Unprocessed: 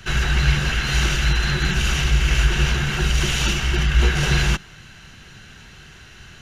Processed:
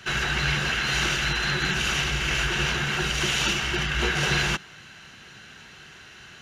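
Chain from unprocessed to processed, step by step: high-pass 300 Hz 6 dB/octave; treble shelf 6.9 kHz -5.5 dB

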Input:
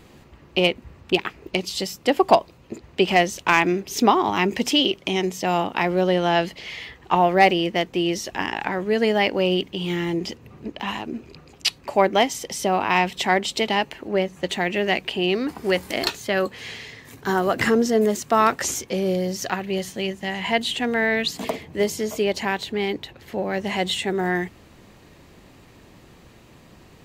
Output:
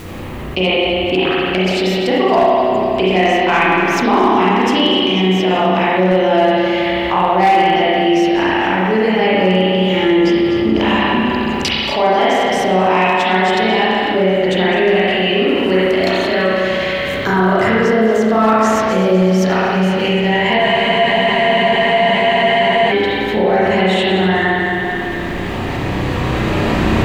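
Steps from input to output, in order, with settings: backward echo that repeats 124 ms, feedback 70%, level -14 dB; recorder AGC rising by 10 dB/s; treble shelf 7.5 kHz -9 dB; spring tank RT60 2 s, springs 32/54 ms, chirp 35 ms, DRR -9.5 dB; word length cut 10-bit, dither triangular; spectral freeze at 20.63 s, 2.27 s; level flattener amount 50%; trim -6.5 dB

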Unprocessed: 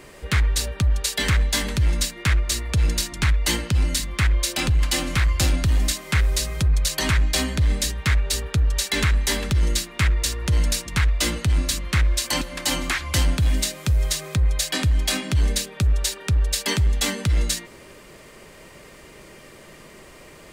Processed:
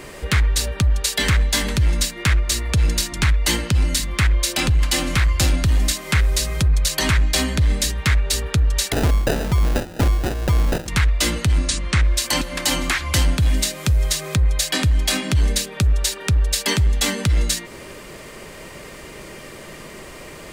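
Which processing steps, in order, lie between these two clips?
11.59–12.03 s: Chebyshev low-pass 9.5 kHz, order 5; in parallel at +3 dB: compression, threshold -31 dBFS, peak gain reduction 14.5 dB; 8.92–10.88 s: on the sum: sample-rate reducer 1.1 kHz, jitter 0%

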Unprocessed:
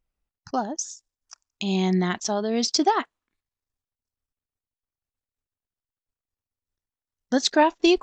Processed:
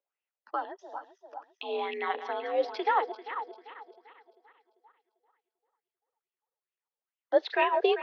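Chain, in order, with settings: backward echo that repeats 197 ms, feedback 65%, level -11 dB; mistuned SSB +55 Hz 330–3500 Hz; sweeping bell 2.3 Hz 520–2800 Hz +14 dB; trim -8.5 dB

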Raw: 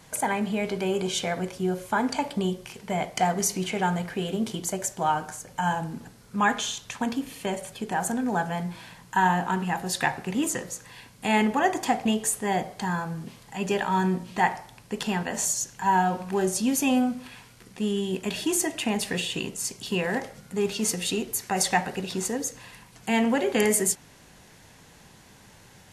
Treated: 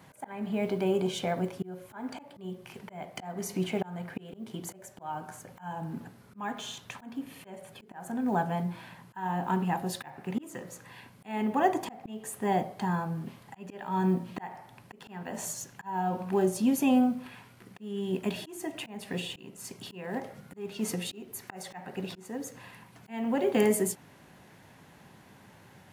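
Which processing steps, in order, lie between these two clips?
block-companded coder 7-bit; high-pass 97 Hz; peaking EQ 6.6 kHz -11.5 dB 2 oct; band-stop 470 Hz, Q 12; slow attack 405 ms; dynamic bell 1.7 kHz, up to -5 dB, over -45 dBFS, Q 1.3

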